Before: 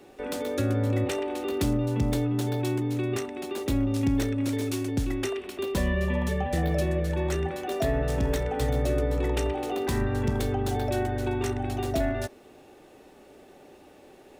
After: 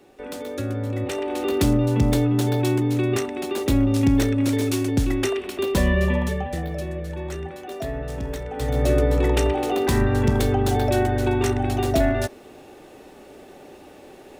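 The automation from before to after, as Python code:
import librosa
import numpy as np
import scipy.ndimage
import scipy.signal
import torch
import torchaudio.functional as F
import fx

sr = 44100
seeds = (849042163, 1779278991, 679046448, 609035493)

y = fx.gain(x, sr, db=fx.line((0.95, -1.5), (1.43, 6.5), (6.07, 6.5), (6.69, -3.5), (8.47, -3.5), (8.89, 7.0)))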